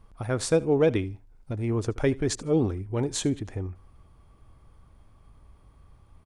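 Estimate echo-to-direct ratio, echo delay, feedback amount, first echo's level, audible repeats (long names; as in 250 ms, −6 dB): −22.0 dB, 77 ms, 23%, −22.0 dB, 2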